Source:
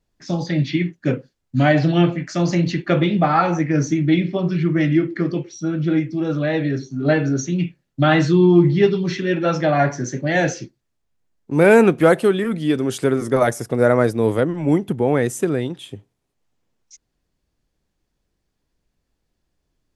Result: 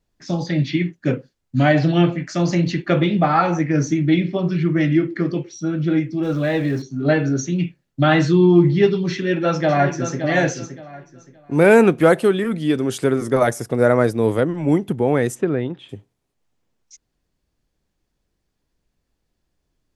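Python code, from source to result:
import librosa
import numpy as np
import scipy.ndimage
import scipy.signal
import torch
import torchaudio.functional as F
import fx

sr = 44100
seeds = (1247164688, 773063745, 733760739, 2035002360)

y = fx.zero_step(x, sr, step_db=-38.0, at=(6.23, 6.82))
y = fx.echo_throw(y, sr, start_s=9.11, length_s=1.12, ms=570, feedback_pct=25, wet_db=-9.0)
y = fx.lowpass(y, sr, hz=2600.0, slope=12, at=(15.34, 15.88), fade=0.02)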